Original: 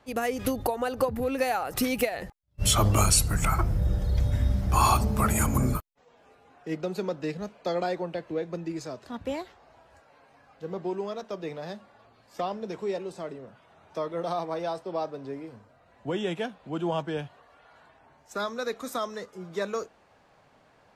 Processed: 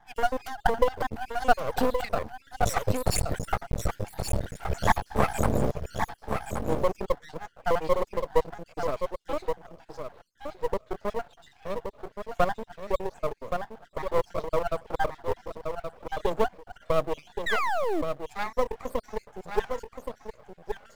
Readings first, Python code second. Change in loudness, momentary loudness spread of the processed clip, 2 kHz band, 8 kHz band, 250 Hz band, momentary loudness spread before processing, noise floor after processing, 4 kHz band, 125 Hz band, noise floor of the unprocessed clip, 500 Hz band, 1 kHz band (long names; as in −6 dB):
−1.5 dB, 13 LU, +3.0 dB, −9.0 dB, −3.5 dB, 17 LU, −63 dBFS, −5.0 dB, −5.5 dB, −61 dBFS, +2.5 dB, +2.0 dB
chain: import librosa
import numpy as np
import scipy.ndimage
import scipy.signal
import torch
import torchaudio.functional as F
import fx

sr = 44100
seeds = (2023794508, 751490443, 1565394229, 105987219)

p1 = fx.spec_dropout(x, sr, seeds[0], share_pct=69)
p2 = fx.band_shelf(p1, sr, hz=610.0, db=11.0, octaves=1.3)
p3 = p2 + fx.echo_single(p2, sr, ms=1123, db=-6.5, dry=0)
p4 = fx.spec_paint(p3, sr, seeds[1], shape='fall', start_s=17.46, length_s=0.56, low_hz=280.0, high_hz=2000.0, level_db=-25.0)
p5 = fx.high_shelf(p4, sr, hz=8100.0, db=-8.5)
p6 = fx.quant_float(p5, sr, bits=2)
p7 = p5 + (p6 * 10.0 ** (-8.0 / 20.0))
y = np.maximum(p7, 0.0)